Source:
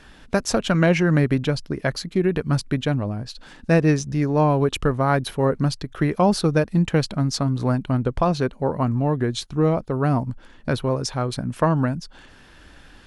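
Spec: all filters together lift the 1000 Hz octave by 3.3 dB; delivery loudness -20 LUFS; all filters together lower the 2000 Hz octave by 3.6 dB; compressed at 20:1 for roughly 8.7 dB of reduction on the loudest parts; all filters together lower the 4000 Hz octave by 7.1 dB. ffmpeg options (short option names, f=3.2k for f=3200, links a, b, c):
-af "equalizer=f=1k:t=o:g=6,equalizer=f=2k:t=o:g=-6,equalizer=f=4k:t=o:g=-8,acompressor=threshold=-20dB:ratio=20,volume=7dB"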